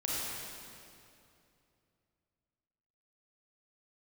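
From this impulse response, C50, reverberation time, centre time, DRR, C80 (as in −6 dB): −4.5 dB, 2.7 s, 176 ms, −6.5 dB, −2.5 dB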